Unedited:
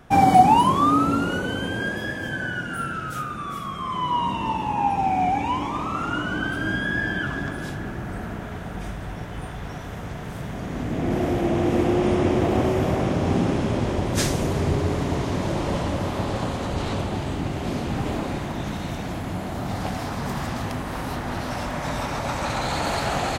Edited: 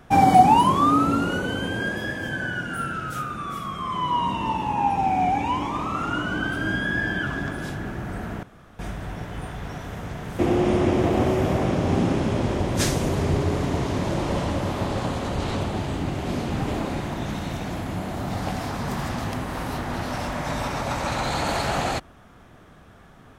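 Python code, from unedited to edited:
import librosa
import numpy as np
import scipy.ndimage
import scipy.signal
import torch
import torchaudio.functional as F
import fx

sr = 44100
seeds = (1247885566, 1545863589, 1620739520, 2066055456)

y = fx.edit(x, sr, fx.room_tone_fill(start_s=8.43, length_s=0.36),
    fx.cut(start_s=10.39, length_s=1.38), tone=tone)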